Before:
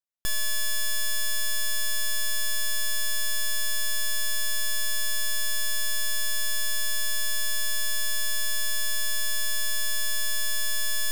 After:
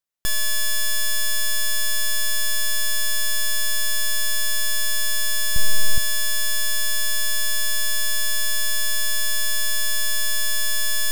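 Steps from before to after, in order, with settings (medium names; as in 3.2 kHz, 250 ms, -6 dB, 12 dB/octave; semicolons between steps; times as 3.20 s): 5.56–5.98 s: bass shelf 490 Hz +10 dB; trim +5 dB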